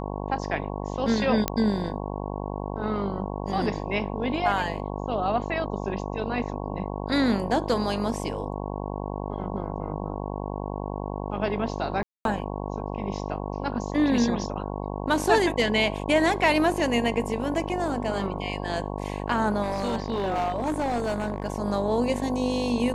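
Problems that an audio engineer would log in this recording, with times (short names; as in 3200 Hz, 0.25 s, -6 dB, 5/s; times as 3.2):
buzz 50 Hz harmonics 22 -32 dBFS
1.48 pop -7 dBFS
12.03–12.25 gap 0.222 s
19.62–21.46 clipped -22 dBFS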